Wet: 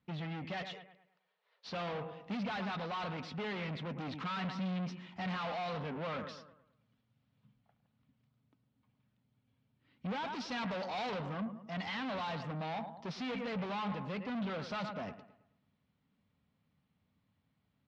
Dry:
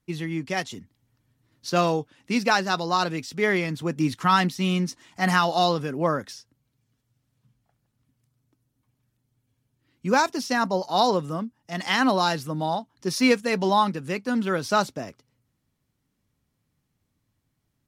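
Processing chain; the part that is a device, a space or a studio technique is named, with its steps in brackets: 0.62–1.71 steep high-pass 410 Hz 96 dB/oct; analogue delay pedal into a guitar amplifier (analogue delay 0.108 s, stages 2048, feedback 39%, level -17 dB; tube stage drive 36 dB, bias 0.25; speaker cabinet 80–3800 Hz, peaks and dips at 120 Hz -6 dB, 200 Hz +4 dB, 340 Hz -10 dB, 1700 Hz -3 dB); 10.3–11.29 high shelf 4000 Hz +8 dB

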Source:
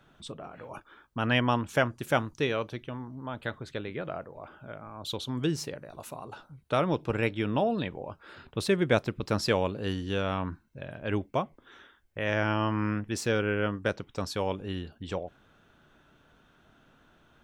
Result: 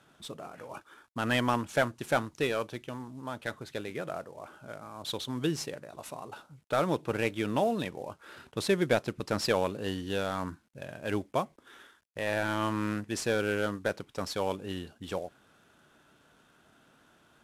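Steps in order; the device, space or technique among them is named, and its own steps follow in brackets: early wireless headset (HPF 160 Hz 6 dB/oct; CVSD 64 kbps)

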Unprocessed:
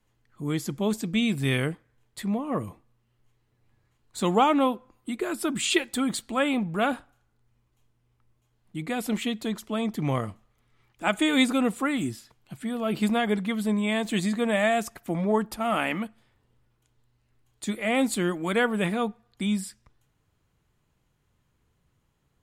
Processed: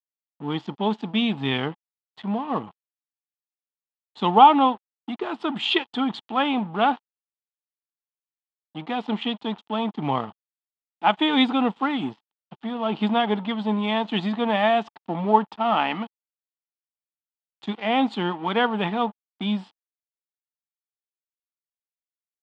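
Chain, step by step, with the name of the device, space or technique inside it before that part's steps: blown loudspeaker (crossover distortion -41 dBFS; speaker cabinet 200–3500 Hz, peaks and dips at 350 Hz -4 dB, 550 Hz -8 dB, 860 Hz +10 dB, 1600 Hz -5 dB, 2200 Hz -7 dB, 3200 Hz +5 dB); gain +5 dB

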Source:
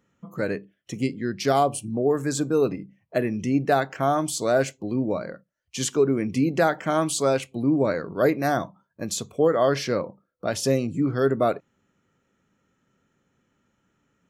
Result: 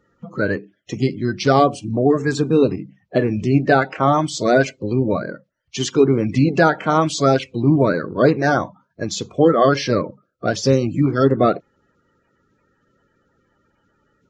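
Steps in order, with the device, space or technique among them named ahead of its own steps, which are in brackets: clip after many re-uploads (LPF 5900 Hz 24 dB/oct; bin magnitudes rounded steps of 30 dB); gain +7 dB

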